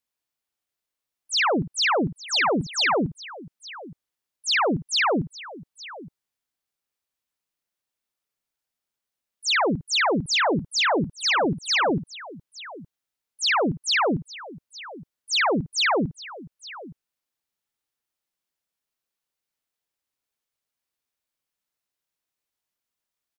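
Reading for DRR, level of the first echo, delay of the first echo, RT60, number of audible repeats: no reverb audible, −11.0 dB, 54 ms, no reverb audible, 2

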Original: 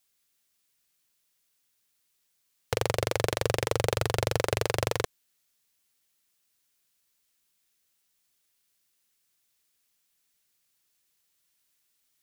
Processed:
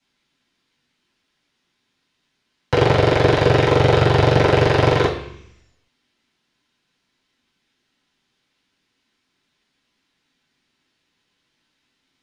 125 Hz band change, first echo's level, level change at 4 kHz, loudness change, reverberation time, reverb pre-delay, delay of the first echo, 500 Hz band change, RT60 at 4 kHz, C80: +15.5 dB, no echo audible, +9.0 dB, +13.0 dB, 0.70 s, 3 ms, no echo audible, +13.0 dB, 1.2 s, 10.0 dB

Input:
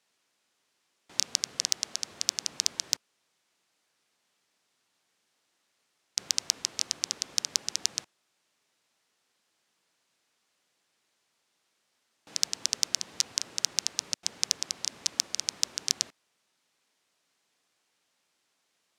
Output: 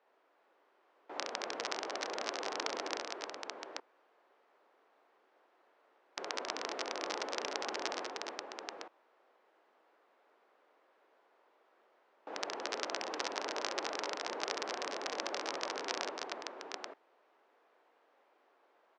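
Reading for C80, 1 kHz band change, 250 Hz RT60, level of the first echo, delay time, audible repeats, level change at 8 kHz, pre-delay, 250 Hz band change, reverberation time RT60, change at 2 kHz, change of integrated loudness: no reverb audible, +12.5 dB, no reverb audible, −5.0 dB, 66 ms, 4, −17.0 dB, no reverb audible, +7.0 dB, no reverb audible, +3.0 dB, −9.5 dB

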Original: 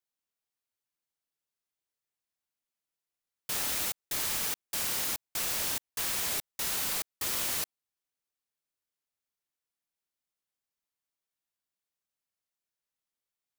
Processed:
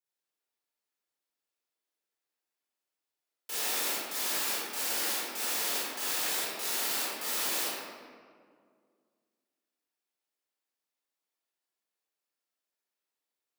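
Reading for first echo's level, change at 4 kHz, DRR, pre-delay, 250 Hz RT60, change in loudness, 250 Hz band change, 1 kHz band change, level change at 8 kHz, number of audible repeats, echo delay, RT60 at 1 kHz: no echo audible, +1.5 dB, −9.0 dB, 23 ms, 2.4 s, 0.0 dB, +1.5 dB, +3.5 dB, 0.0 dB, no echo audible, no echo audible, 1.9 s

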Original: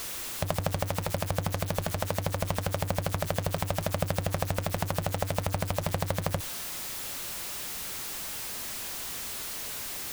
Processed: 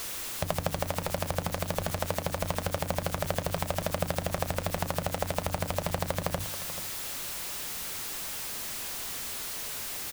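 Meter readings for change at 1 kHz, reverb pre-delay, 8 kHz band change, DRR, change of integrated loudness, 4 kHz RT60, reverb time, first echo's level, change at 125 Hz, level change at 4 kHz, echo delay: 0.0 dB, no reverb audible, 0.0 dB, no reverb audible, −0.5 dB, no reverb audible, no reverb audible, −13.5 dB, −3.5 dB, 0.0 dB, 434 ms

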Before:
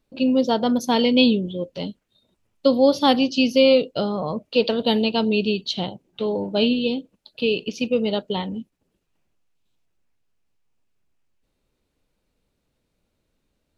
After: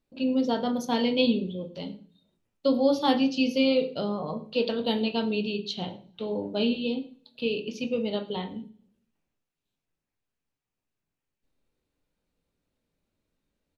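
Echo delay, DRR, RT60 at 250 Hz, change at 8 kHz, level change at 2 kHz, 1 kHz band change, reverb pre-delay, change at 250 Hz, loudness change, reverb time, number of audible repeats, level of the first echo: 111 ms, 4.0 dB, 0.65 s, can't be measured, −7.0 dB, −6.5 dB, 13 ms, −5.5 dB, −6.5 dB, 0.45 s, 1, −22.5 dB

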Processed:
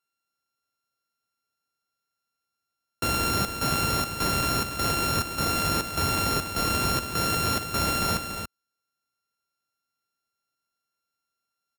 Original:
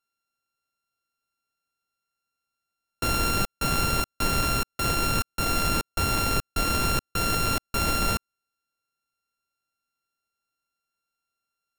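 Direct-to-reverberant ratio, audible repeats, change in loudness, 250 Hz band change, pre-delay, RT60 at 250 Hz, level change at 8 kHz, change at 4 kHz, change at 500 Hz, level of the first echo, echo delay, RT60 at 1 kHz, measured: no reverb audible, 1, 0.0 dB, +0.5 dB, no reverb audible, no reverb audible, +0.5 dB, +1.0 dB, +0.5 dB, −8.0 dB, 285 ms, no reverb audible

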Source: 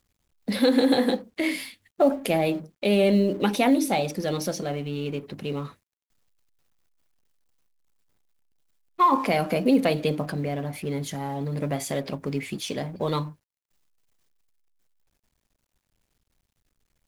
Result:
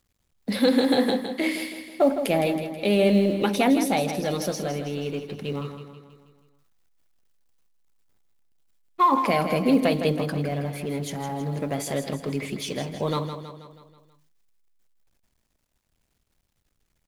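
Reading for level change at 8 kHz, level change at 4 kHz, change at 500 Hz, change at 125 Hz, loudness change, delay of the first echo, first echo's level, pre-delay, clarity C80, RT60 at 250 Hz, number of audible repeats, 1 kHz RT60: +0.5 dB, +1.0 dB, +0.5 dB, +0.5 dB, +0.5 dB, 161 ms, −9.0 dB, no reverb audible, no reverb audible, no reverb audible, 5, no reverb audible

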